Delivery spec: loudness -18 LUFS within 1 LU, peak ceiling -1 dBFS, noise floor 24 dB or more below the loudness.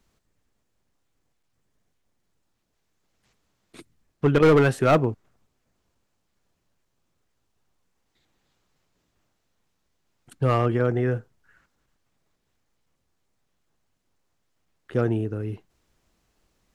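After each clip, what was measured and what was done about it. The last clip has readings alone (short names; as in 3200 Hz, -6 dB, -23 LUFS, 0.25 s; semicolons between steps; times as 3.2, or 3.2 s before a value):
clipped 0.4%; flat tops at -12.0 dBFS; loudness -22.5 LUFS; peak -12.0 dBFS; loudness target -18.0 LUFS
-> clip repair -12 dBFS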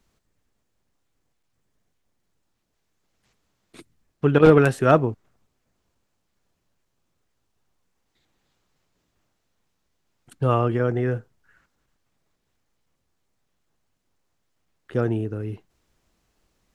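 clipped 0.0%; loudness -21.0 LUFS; peak -3.0 dBFS; loudness target -18.0 LUFS
-> gain +3 dB; limiter -1 dBFS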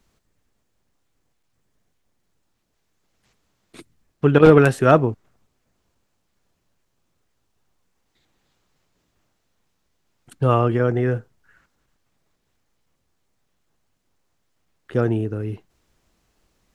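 loudness -18.0 LUFS; peak -1.0 dBFS; noise floor -71 dBFS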